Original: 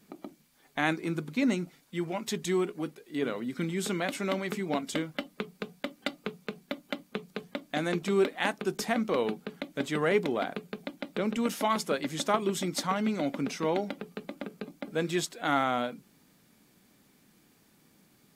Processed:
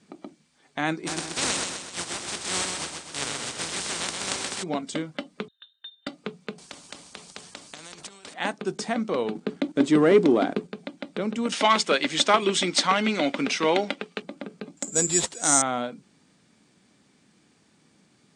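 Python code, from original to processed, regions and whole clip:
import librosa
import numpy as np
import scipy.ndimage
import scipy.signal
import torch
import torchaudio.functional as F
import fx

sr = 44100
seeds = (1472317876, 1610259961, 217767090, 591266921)

y = fx.spec_flatten(x, sr, power=0.14, at=(1.06, 4.62), fade=0.02)
y = fx.echo_feedback(y, sr, ms=128, feedback_pct=51, wet_db=-4.5, at=(1.06, 4.62), fade=0.02)
y = fx.chain(y, sr, fx.median_filter(points=9),
    fx.vowel_filter(vowel='u'),
    fx.freq_invert(carrier_hz=3900), at=(5.48, 6.07))
y = fx.chain(y, sr, fx.peak_eq(hz=1900.0, db=-10.0, octaves=1.3),
    fx.over_compress(threshold_db=-36.0, ratio=-1.0),
    fx.spectral_comp(ratio=4.0), at=(6.58, 8.34))
y = fx.chain(y, sr, fx.peak_eq(hz=310.0, db=10.0, octaves=0.85),
    fx.leveller(passes=1), at=(9.35, 10.72))
y = fx.chain(y, sr, fx.highpass(hz=220.0, slope=12),
    fx.peak_eq(hz=2700.0, db=11.0, octaves=1.9),
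    fx.leveller(passes=1), at=(11.52, 14.22))
y = fx.chain(y, sr, fx.brickwall_lowpass(high_hz=9100.0),
    fx.resample_bad(factor=6, down='none', up='zero_stuff'), at=(14.77, 15.62))
y = scipy.signal.sosfilt(scipy.signal.butter(2, 62.0, 'highpass', fs=sr, output='sos'), y)
y = fx.dynamic_eq(y, sr, hz=2300.0, q=0.88, threshold_db=-46.0, ratio=4.0, max_db=-3)
y = scipy.signal.sosfilt(scipy.signal.ellip(4, 1.0, 40, 9000.0, 'lowpass', fs=sr, output='sos'), y)
y = F.gain(torch.from_numpy(y), 3.0).numpy()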